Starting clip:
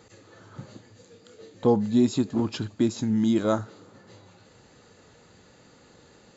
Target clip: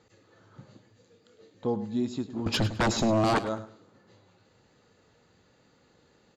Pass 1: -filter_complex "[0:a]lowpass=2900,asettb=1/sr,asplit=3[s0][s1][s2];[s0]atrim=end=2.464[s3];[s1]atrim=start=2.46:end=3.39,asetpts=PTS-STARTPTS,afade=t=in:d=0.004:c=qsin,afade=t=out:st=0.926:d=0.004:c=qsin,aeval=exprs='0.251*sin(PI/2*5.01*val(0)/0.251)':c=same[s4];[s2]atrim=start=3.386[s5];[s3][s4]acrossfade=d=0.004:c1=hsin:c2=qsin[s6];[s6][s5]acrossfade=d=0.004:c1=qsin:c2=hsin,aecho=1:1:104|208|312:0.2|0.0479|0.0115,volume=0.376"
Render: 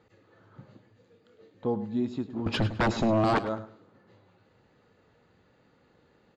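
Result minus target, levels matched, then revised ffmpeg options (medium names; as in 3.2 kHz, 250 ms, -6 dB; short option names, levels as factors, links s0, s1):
8 kHz band -11.0 dB
-filter_complex "[0:a]lowpass=6300,asettb=1/sr,asplit=3[s0][s1][s2];[s0]atrim=end=2.464[s3];[s1]atrim=start=2.46:end=3.39,asetpts=PTS-STARTPTS,afade=t=in:d=0.004:c=qsin,afade=t=out:st=0.926:d=0.004:c=qsin,aeval=exprs='0.251*sin(PI/2*5.01*val(0)/0.251)':c=same[s4];[s2]atrim=start=3.386[s5];[s3][s4]acrossfade=d=0.004:c1=hsin:c2=qsin[s6];[s6][s5]acrossfade=d=0.004:c1=qsin:c2=hsin,aecho=1:1:104|208|312:0.2|0.0479|0.0115,volume=0.376"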